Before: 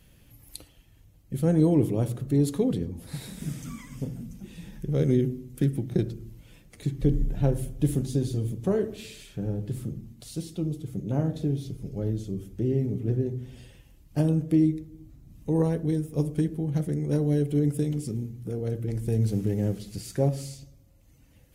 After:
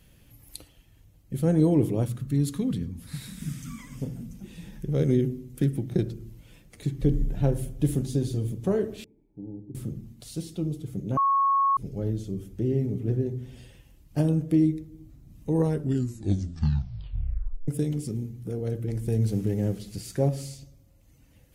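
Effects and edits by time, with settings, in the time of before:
2.05–3.79 band shelf 540 Hz -10.5 dB
9.04–9.75 vocal tract filter u
11.17–11.77 bleep 1100 Hz -19 dBFS
15.63 tape stop 2.05 s

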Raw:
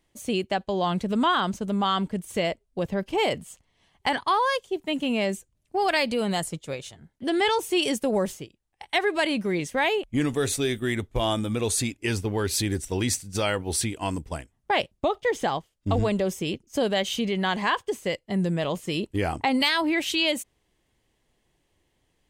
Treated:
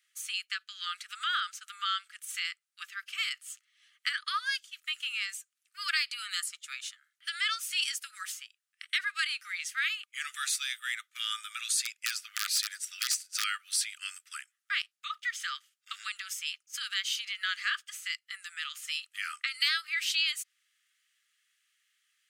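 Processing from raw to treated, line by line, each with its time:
11.83–13.44 wrapped overs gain 16 dB
whole clip: Chebyshev high-pass 1200 Hz, order 10; dynamic EQ 4800 Hz, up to +6 dB, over -48 dBFS, Q 3.2; compressor 1.5:1, threshold -39 dBFS; gain +2.5 dB

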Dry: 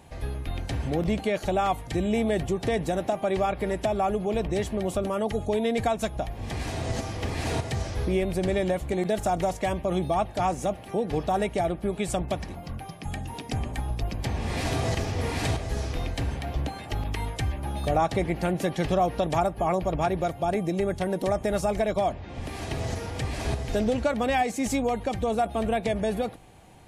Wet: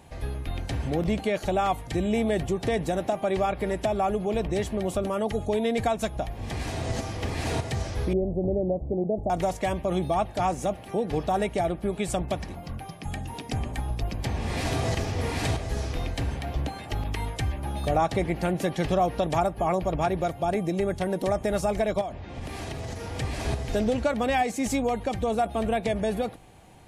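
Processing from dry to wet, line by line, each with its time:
8.13–9.3 inverse Chebyshev low-pass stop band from 1400 Hz
22.01–23.11 compressor, threshold -30 dBFS

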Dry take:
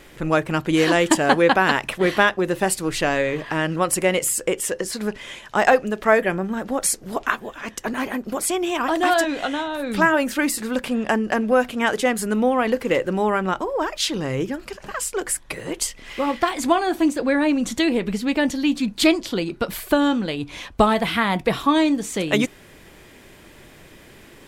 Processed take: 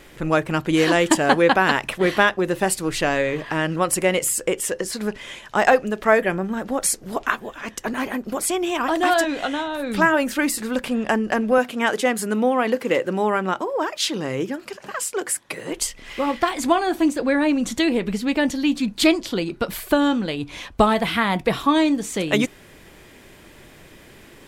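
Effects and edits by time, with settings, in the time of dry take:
11.58–15.72 HPF 160 Hz

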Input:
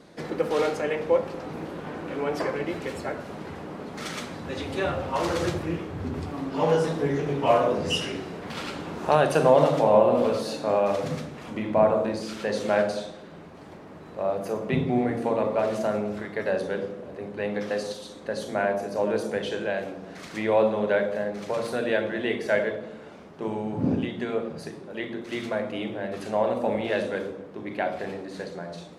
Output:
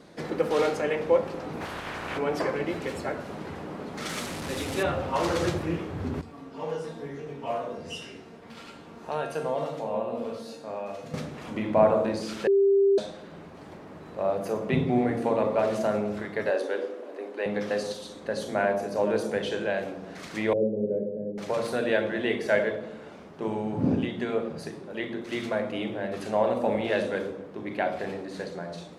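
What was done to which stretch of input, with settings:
1.6–2.17 spectral limiter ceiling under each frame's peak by 19 dB
4.09–4.83 delta modulation 64 kbps, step -29.5 dBFS
6.21–11.14 resonator 230 Hz, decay 0.42 s, mix 80%
12.47–12.98 bleep 395 Hz -17 dBFS
16.5–17.46 steep high-pass 260 Hz 48 dB/oct
20.53–21.38 elliptic band-pass 100–480 Hz

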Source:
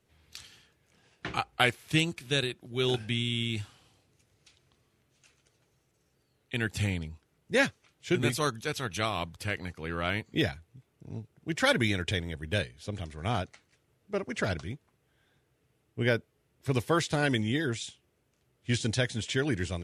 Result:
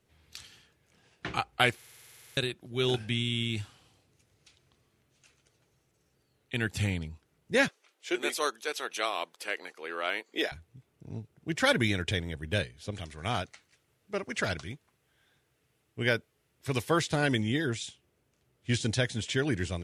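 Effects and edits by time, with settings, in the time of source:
1.77 stutter in place 0.05 s, 12 plays
7.68–10.52 HPF 360 Hz 24 dB/oct
12.91–16.91 tilt shelf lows -3.5 dB, about 910 Hz

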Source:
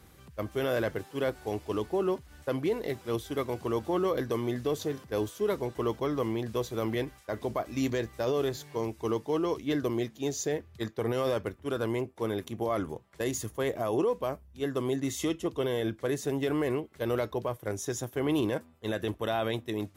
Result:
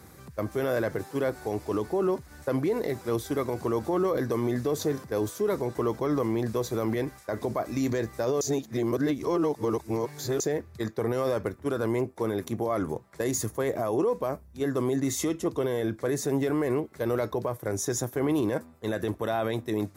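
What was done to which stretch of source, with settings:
8.41–10.4 reverse
whole clip: limiter -25.5 dBFS; HPF 78 Hz; bell 3000 Hz -10.5 dB 0.51 oct; gain +7 dB

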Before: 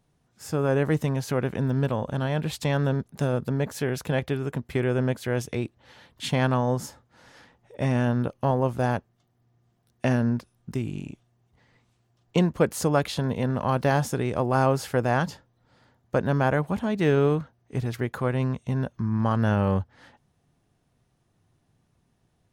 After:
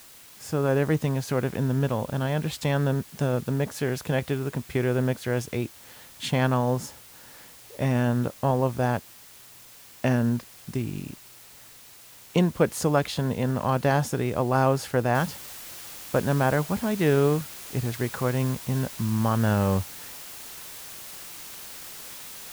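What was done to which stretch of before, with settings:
15.15 noise floor step -49 dB -41 dB

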